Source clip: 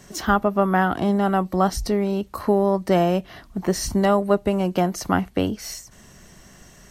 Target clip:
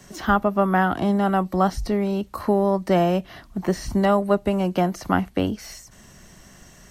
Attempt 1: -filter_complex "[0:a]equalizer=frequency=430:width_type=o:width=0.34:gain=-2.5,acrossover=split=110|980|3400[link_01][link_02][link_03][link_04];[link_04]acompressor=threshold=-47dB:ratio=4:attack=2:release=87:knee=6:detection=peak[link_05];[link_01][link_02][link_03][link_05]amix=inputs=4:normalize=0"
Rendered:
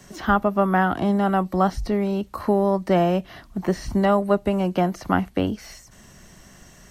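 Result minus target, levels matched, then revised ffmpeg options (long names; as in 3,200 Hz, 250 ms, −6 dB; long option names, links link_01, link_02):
downward compressor: peak gain reduction +5.5 dB
-filter_complex "[0:a]equalizer=frequency=430:width_type=o:width=0.34:gain=-2.5,acrossover=split=110|980|3400[link_01][link_02][link_03][link_04];[link_04]acompressor=threshold=-40dB:ratio=4:attack=2:release=87:knee=6:detection=peak[link_05];[link_01][link_02][link_03][link_05]amix=inputs=4:normalize=0"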